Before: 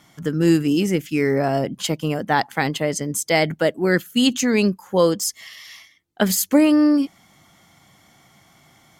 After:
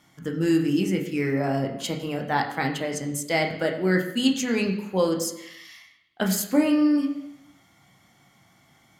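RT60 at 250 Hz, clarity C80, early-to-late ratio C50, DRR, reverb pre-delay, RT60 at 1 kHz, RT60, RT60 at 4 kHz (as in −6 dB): 0.85 s, 10.0 dB, 8.5 dB, 1.5 dB, 14 ms, 0.85 s, 0.85 s, 0.90 s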